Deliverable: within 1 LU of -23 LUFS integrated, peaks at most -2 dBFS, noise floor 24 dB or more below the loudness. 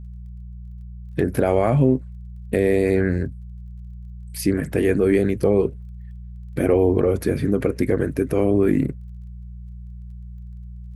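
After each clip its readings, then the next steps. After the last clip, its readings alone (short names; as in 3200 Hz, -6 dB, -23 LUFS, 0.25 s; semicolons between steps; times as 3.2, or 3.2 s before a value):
ticks 24/s; hum 60 Hz; harmonics up to 180 Hz; hum level -33 dBFS; loudness -20.5 LUFS; peak -5.0 dBFS; loudness target -23.0 LUFS
-> de-click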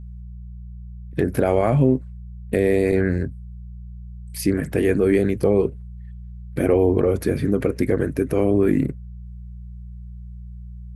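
ticks 0.091/s; hum 60 Hz; harmonics up to 180 Hz; hum level -33 dBFS
-> de-hum 60 Hz, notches 3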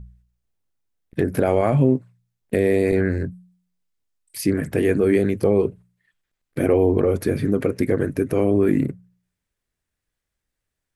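hum none; loudness -20.5 LUFS; peak -5.0 dBFS; loudness target -23.0 LUFS
-> gain -2.5 dB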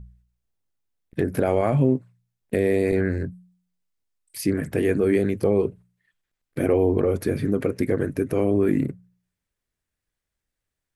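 loudness -23.0 LUFS; peak -7.5 dBFS; noise floor -85 dBFS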